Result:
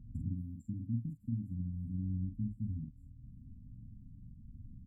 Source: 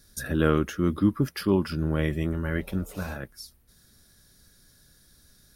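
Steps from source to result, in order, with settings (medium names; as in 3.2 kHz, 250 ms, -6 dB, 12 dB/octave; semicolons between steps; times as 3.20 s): level-controlled noise filter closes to 980 Hz, open at -17.5 dBFS; tilt shelf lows +7 dB, about 680 Hz; compression 6:1, threshold -39 dBFS, peak gain reduction 25 dB; peaking EQ 99 Hz +9 dB 0.24 oct; doubling 49 ms -4 dB; tape speed +14%; brick-wall FIR band-stop 290–7100 Hz; trim +1.5 dB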